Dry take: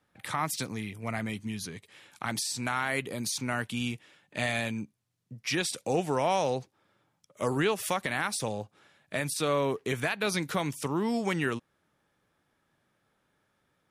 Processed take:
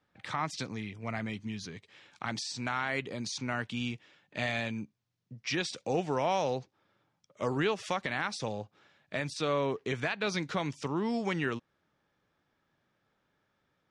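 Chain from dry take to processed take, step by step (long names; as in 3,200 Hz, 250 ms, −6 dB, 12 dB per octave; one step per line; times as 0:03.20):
low-pass filter 6,300 Hz 24 dB per octave
level −2.5 dB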